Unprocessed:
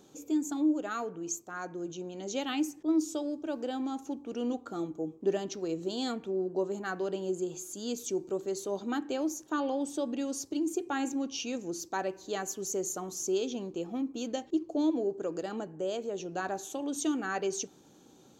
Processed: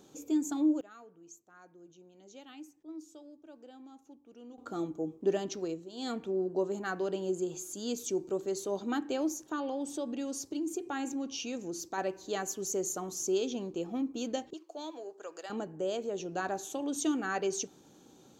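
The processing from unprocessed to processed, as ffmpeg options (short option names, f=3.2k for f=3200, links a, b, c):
-filter_complex "[0:a]asettb=1/sr,asplit=3[a][b][c];[a]atrim=end=9.354[d];[b]atrim=start=9.35:end=11.98,asetpts=PTS-STARTPTS,afade=t=in:d=0.004:c=qsin,afade=t=out:st=2.626:d=0.004:c=qsin,acompressor=threshold=-37dB:ratio=1.5:attack=3.2:release=140:knee=1:detection=peak[e];[c]atrim=start=11.976[f];[d][e]acrossfade=d=0.004:c1=hsin:c2=qsin[g];[g][f]acrossfade=d=0.004:c1=qsin:c2=hsin,asettb=1/sr,asplit=3[h][i][j];[h]atrim=end=14.534[k];[i]atrim=start=14.53:end=15.5,asetpts=PTS-STARTPTS,afade=t=in:d=0.004:c=qsin,afade=t=out:st=0.966:d=0.004:c=qsin,highpass=860[l];[j]atrim=start=15.496[m];[k][l]acrossfade=d=0.004:c1=hsin:c2=qsin[n];[n][m]acrossfade=d=0.004:c1=qsin:c2=hsin,asplit=5[o][p][q][r][s];[o]atrim=end=0.81,asetpts=PTS-STARTPTS,afade=t=out:st=0.65:d=0.16:c=log:silence=0.133352[t];[p]atrim=start=0.81:end=4.58,asetpts=PTS-STARTPTS,volume=-17.5dB[u];[q]atrim=start=4.58:end=5.86,asetpts=PTS-STARTPTS,afade=t=in:d=0.16:c=log:silence=0.133352,afade=t=out:st=1.04:d=0.24:silence=0.223872[v];[r]atrim=start=5.86:end=5.92,asetpts=PTS-STARTPTS,volume=-13dB[w];[s]atrim=start=5.92,asetpts=PTS-STARTPTS,afade=t=in:d=0.24:silence=0.223872[x];[t][u][v][w][x]concat=n=5:v=0:a=1"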